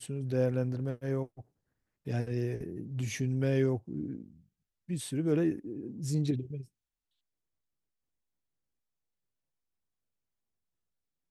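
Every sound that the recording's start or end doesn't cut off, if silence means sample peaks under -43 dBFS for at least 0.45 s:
2.07–4.26 s
4.89–6.62 s

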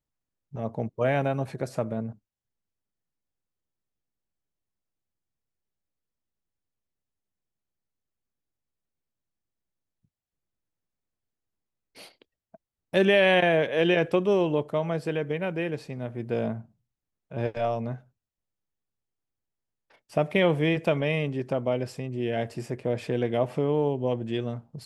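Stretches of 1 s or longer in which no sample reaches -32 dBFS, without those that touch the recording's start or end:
2.10–12.94 s
17.95–20.16 s

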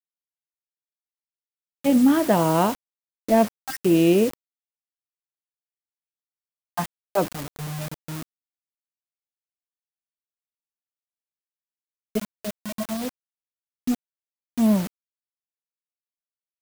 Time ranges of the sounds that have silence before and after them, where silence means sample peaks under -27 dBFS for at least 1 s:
1.84–4.34 s
6.77–8.23 s
12.15–14.87 s

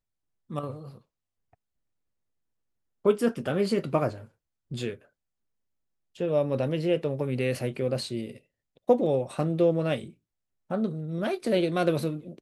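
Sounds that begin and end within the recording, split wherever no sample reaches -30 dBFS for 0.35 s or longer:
0.53–0.71 s
3.06–4.10 s
4.72–4.91 s
6.20–8.26 s
8.89–9.99 s

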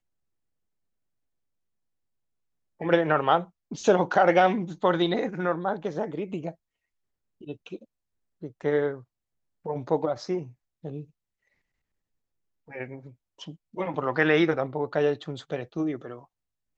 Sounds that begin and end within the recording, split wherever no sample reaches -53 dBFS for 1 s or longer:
2.80–11.10 s

